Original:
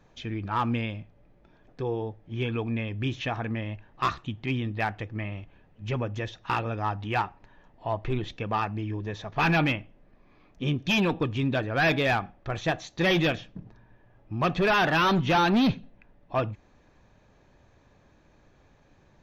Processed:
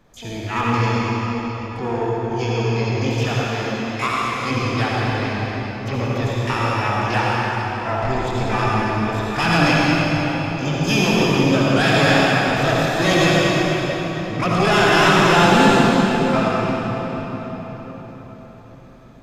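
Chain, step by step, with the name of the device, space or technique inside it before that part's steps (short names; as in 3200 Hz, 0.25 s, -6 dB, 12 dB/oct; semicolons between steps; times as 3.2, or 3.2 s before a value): shimmer-style reverb (harmoniser +12 st -6 dB; reverb RT60 4.9 s, pre-delay 59 ms, DRR -6 dB); 3.47–4.5 low shelf 220 Hz -8.5 dB; gain +2 dB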